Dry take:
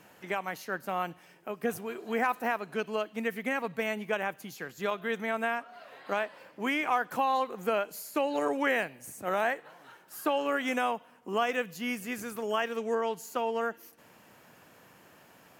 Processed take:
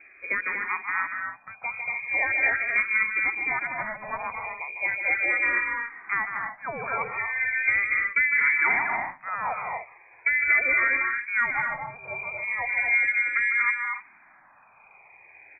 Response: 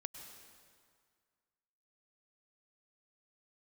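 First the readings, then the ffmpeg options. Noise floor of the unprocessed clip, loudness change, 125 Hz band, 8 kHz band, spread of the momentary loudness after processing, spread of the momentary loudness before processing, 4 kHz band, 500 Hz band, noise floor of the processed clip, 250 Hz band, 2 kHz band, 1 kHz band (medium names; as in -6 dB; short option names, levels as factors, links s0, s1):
-58 dBFS, +7.5 dB, no reading, under -35 dB, 13 LU, 9 LU, under -40 dB, -9.5 dB, -55 dBFS, -12.5 dB, +13.0 dB, +0.5 dB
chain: -filter_complex "[0:a]lowshelf=f=240:g=9,aecho=1:1:152|236|273|294:0.422|0.596|0.266|0.299,lowpass=f=2200:t=q:w=0.5098,lowpass=f=2200:t=q:w=0.6013,lowpass=f=2200:t=q:w=0.9,lowpass=f=2200:t=q:w=2.563,afreqshift=-2600,asplit=2[s0][s1];[s1]afreqshift=-0.38[s2];[s0][s2]amix=inputs=2:normalize=1,volume=1.68"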